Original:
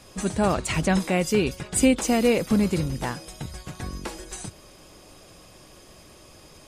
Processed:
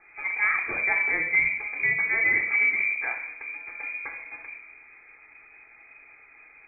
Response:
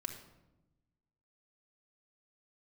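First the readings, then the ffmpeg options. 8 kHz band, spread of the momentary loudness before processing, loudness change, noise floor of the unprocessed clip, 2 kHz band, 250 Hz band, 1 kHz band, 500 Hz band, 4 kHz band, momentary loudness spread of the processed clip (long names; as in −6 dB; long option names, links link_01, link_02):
below −40 dB, 16 LU, 0.0 dB, −50 dBFS, +12.0 dB, −25.0 dB, −6.5 dB, −18.5 dB, below −40 dB, 16 LU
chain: -filter_complex "[0:a]crystalizer=i=3:c=0[link_01];[1:a]atrim=start_sample=2205,asetrate=57330,aresample=44100[link_02];[link_01][link_02]afir=irnorm=-1:irlink=0,lowpass=frequency=2100:width_type=q:width=0.5098,lowpass=frequency=2100:width_type=q:width=0.6013,lowpass=frequency=2100:width_type=q:width=0.9,lowpass=frequency=2100:width_type=q:width=2.563,afreqshift=-2500"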